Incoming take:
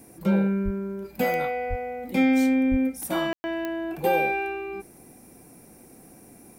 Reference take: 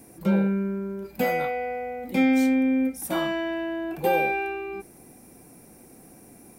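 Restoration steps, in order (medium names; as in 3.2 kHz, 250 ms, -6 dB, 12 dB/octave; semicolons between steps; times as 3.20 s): de-click; de-plosive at 0.64/1.69/2.70 s; room tone fill 3.33–3.44 s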